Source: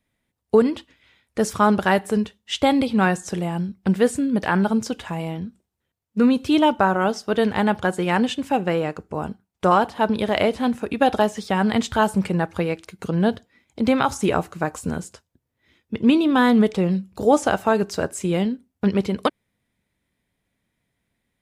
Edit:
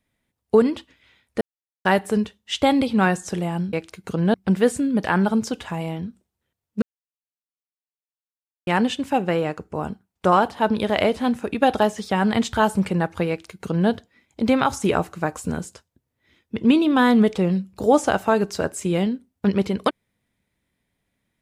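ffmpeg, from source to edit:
ffmpeg -i in.wav -filter_complex "[0:a]asplit=7[link_01][link_02][link_03][link_04][link_05][link_06][link_07];[link_01]atrim=end=1.41,asetpts=PTS-STARTPTS,afade=type=out:start_time=1.406:duration=0.004:curve=hsin[link_08];[link_02]atrim=start=1.41:end=1.85,asetpts=PTS-STARTPTS,volume=0[link_09];[link_03]atrim=start=1.85:end=3.732,asetpts=PTS-STARTPTS,afade=type=in:duration=0.004:curve=hsin[link_10];[link_04]atrim=start=12.678:end=13.292[link_11];[link_05]atrim=start=3.728:end=6.21,asetpts=PTS-STARTPTS,afade=type=out:start_time=2.478:duration=0.004:curve=hsin[link_12];[link_06]atrim=start=6.21:end=8.06,asetpts=PTS-STARTPTS,volume=0[link_13];[link_07]atrim=start=8.06,asetpts=PTS-STARTPTS,afade=type=in:duration=0.004:curve=hsin[link_14];[link_08][link_09][link_10]concat=n=3:v=0:a=1[link_15];[link_15][link_11]acrossfade=duration=0.004:curve1=hsin:curve2=hsin[link_16];[link_12][link_13][link_14]concat=n=3:v=0:a=1[link_17];[link_16][link_17]acrossfade=duration=0.004:curve1=hsin:curve2=hsin" out.wav

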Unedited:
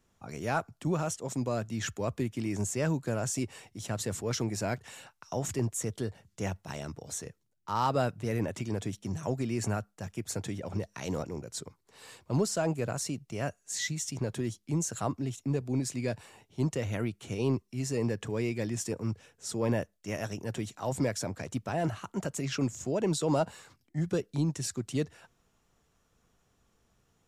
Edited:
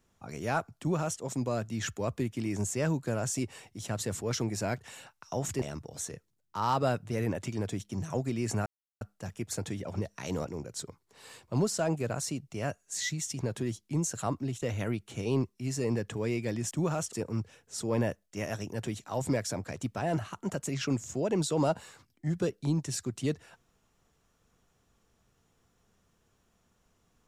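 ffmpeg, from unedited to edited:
ffmpeg -i in.wav -filter_complex "[0:a]asplit=6[link_01][link_02][link_03][link_04][link_05][link_06];[link_01]atrim=end=5.622[link_07];[link_02]atrim=start=6.748:end=9.79,asetpts=PTS-STARTPTS,afade=type=out:start_time=3.038:duration=0.004:curve=hsin,apad=pad_dur=0.35[link_08];[link_03]atrim=start=9.79:end=15.402,asetpts=PTS-STARTPTS,afade=type=in:duration=0.004:curve=hsin[link_09];[link_04]atrim=start=16.748:end=18.842[link_10];[link_05]atrim=start=0.788:end=1.212[link_11];[link_06]atrim=start=18.838[link_12];[link_08][link_09]concat=n=2:v=0:a=1[link_13];[link_07][link_13]acrossfade=duration=0.004:curve1=hsin:curve2=hsin[link_14];[link_14][link_10]acrossfade=duration=0.004:curve1=hsin:curve2=hsin[link_15];[link_15][link_11]acrossfade=duration=0.004:curve1=hsin:curve2=hsin[link_16];[link_16][link_12]acrossfade=duration=0.004:curve1=hsin:curve2=hsin" out.wav

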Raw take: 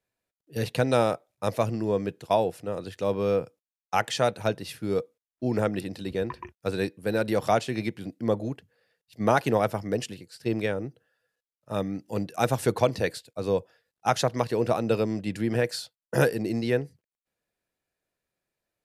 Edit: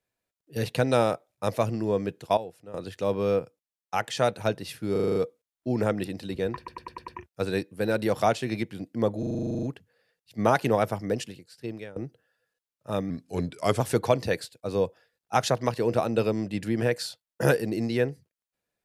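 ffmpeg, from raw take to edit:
ffmpeg -i in.wav -filter_complex "[0:a]asplit=30[link_01][link_02][link_03][link_04][link_05][link_06][link_07][link_08][link_09][link_10][link_11][link_12][link_13][link_14][link_15][link_16][link_17][link_18][link_19][link_20][link_21][link_22][link_23][link_24][link_25][link_26][link_27][link_28][link_29][link_30];[link_01]atrim=end=2.372[link_31];[link_02]atrim=start=2.368:end=2.742,asetpts=PTS-STARTPTS,volume=-12dB[link_32];[link_03]atrim=start=2.738:end=3.392[link_33];[link_04]atrim=start=3.388:end=4.172,asetpts=PTS-STARTPTS,volume=-3dB[link_34];[link_05]atrim=start=4.168:end=4.962[link_35];[link_06]atrim=start=4.918:end=4.962[link_36];[link_07]atrim=start=4.918:end=4.962[link_37];[link_08]atrim=start=4.918:end=4.962[link_38];[link_09]atrim=start=4.918:end=4.962[link_39];[link_10]atrim=start=4.918:end=4.962[link_40];[link_11]atrim=start=4.918:end=6.442[link_41];[link_12]atrim=start=6.338:end=6.442[link_42];[link_13]atrim=start=6.338:end=6.442[link_43];[link_14]atrim=start=6.338:end=6.442[link_44];[link_15]atrim=start=6.338:end=6.442[link_45];[link_16]atrim=start=6.338:end=8.492[link_46];[link_17]atrim=start=8.448:end=8.492[link_47];[link_18]atrim=start=8.448:end=8.492[link_48];[link_19]atrim=start=8.448:end=8.492[link_49];[link_20]atrim=start=8.448:end=8.492[link_50];[link_21]atrim=start=8.448:end=8.492[link_51];[link_22]atrim=start=8.448:end=8.492[link_52];[link_23]atrim=start=8.448:end=8.492[link_53];[link_24]atrim=start=8.448:end=8.492[link_54];[link_25]atrim=start=8.448:end=8.492[link_55];[link_26]atrim=start=8.448:end=8.492[link_56];[link_27]atrim=start=8.448:end=10.78,asetpts=PTS-STARTPTS,afade=type=out:start_time=1.482:duration=0.85:silence=0.11885[link_57];[link_28]atrim=start=10.78:end=11.924,asetpts=PTS-STARTPTS,afade=type=in:duration=0.004:curve=hsin:silence=0.11885[link_58];[link_29]atrim=start=11.92:end=12.53,asetpts=PTS-STARTPTS,asetrate=38367,aresample=44100[link_59];[link_30]atrim=start=12.526[link_60];[link_31][link_32]acrossfade=duration=0.004:curve1=hsin:curve2=hsin[link_61];[link_61][link_33]acrossfade=duration=0.004:curve1=hsin:curve2=hsin[link_62];[link_62][link_34]acrossfade=duration=0.004:curve1=hsin:curve2=hsin[link_63];[link_63][link_35]acrossfade=duration=0.004:curve1=hsin:curve2=hsin[link_64];[link_64][link_36]acrossfade=duration=0.004:curve1=hsin:curve2=hsin[link_65];[link_65][link_37]acrossfade=duration=0.004:curve1=hsin:curve2=hsin[link_66];[link_66][link_38]acrossfade=duration=0.004:curve1=hsin:curve2=hsin[link_67];[link_67][link_39]acrossfade=duration=0.004:curve1=hsin:curve2=hsin[link_68];[link_68][link_40]acrossfade=duration=0.004:curve1=hsin:curve2=hsin[link_69];[link_69][link_41]acrossfade=duration=0.004:curve1=hsin:curve2=hsin[link_70];[link_70][link_42]acrossfade=duration=0.004:curve1=hsin:curve2=hsin[link_71];[link_71][link_43]acrossfade=duration=0.004:curve1=hsin:curve2=hsin[link_72];[link_72][link_44]acrossfade=duration=0.004:curve1=hsin:curve2=hsin[link_73];[link_73][link_45]acrossfade=duration=0.004:curve1=hsin:curve2=hsin[link_74];[link_74][link_46]acrossfade=duration=0.004:curve1=hsin:curve2=hsin[link_75];[link_75][link_47]acrossfade=duration=0.004:curve1=hsin:curve2=hsin[link_76];[link_76][link_48]acrossfade=duration=0.004:curve1=hsin:curve2=hsin[link_77];[link_77][link_49]acrossfade=duration=0.004:curve1=hsin:curve2=hsin[link_78];[link_78][link_50]acrossfade=duration=0.004:curve1=hsin:curve2=hsin[link_79];[link_79][link_51]acrossfade=duration=0.004:curve1=hsin:curve2=hsin[link_80];[link_80][link_52]acrossfade=duration=0.004:curve1=hsin:curve2=hsin[link_81];[link_81][link_53]acrossfade=duration=0.004:curve1=hsin:curve2=hsin[link_82];[link_82][link_54]acrossfade=duration=0.004:curve1=hsin:curve2=hsin[link_83];[link_83][link_55]acrossfade=duration=0.004:curve1=hsin:curve2=hsin[link_84];[link_84][link_56]acrossfade=duration=0.004:curve1=hsin:curve2=hsin[link_85];[link_57][link_58]concat=n=2:v=0:a=1[link_86];[link_85][link_86]acrossfade=duration=0.004:curve1=hsin:curve2=hsin[link_87];[link_87][link_59]acrossfade=duration=0.004:curve1=hsin:curve2=hsin[link_88];[link_88][link_60]acrossfade=duration=0.004:curve1=hsin:curve2=hsin" out.wav

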